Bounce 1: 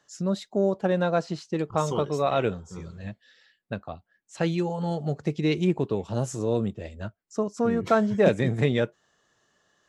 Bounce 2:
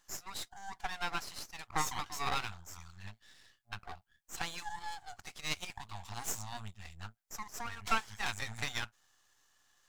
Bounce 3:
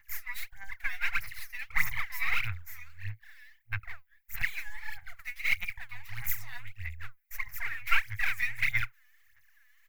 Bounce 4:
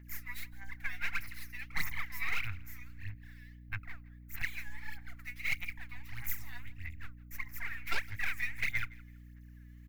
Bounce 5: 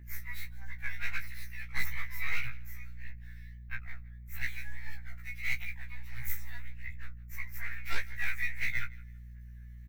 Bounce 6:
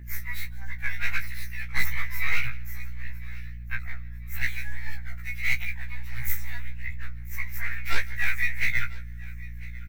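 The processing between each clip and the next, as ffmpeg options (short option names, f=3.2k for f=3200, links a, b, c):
-af "afftfilt=real='re*(1-between(b*sr/4096,110,700))':imag='im*(1-between(b*sr/4096,110,700))':win_size=4096:overlap=0.75,bass=f=250:g=-5,treble=f=4k:g=7,aeval=exprs='max(val(0),0)':c=same"
-af "firequalizer=gain_entry='entry(110,0);entry(230,-29);entry(2100,13);entry(3100,-8);entry(7800,-12);entry(14000,9)':delay=0.05:min_phase=1,aphaser=in_gain=1:out_gain=1:delay=4.1:decay=0.79:speed=1.6:type=sinusoidal"
-af "aeval=exprs='val(0)+0.00501*(sin(2*PI*60*n/s)+sin(2*PI*2*60*n/s)/2+sin(2*PI*3*60*n/s)/3+sin(2*PI*4*60*n/s)/4+sin(2*PI*5*60*n/s)/5)':c=same,volume=18.5dB,asoftclip=hard,volume=-18.5dB,aecho=1:1:165|330:0.075|0.018,volume=-5dB"
-filter_complex "[0:a]asplit=2[a][b];[b]adelay=16,volume=-8dB[c];[a][c]amix=inputs=2:normalize=0,afftfilt=real='re*1.73*eq(mod(b,3),0)':imag='im*1.73*eq(mod(b,3),0)':win_size=2048:overlap=0.75,volume=1dB"
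-af "aecho=1:1:999|1998|2997:0.0891|0.0357|0.0143,volume=7.5dB"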